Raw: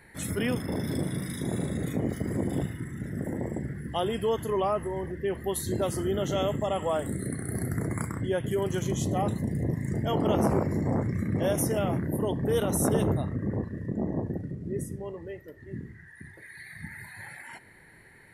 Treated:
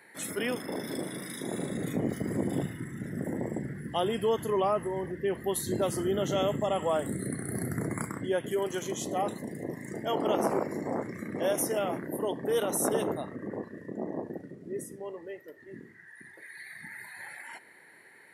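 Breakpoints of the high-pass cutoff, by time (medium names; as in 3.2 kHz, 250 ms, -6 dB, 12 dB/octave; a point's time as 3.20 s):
1.41 s 310 Hz
1.96 s 140 Hz
7.80 s 140 Hz
8.68 s 330 Hz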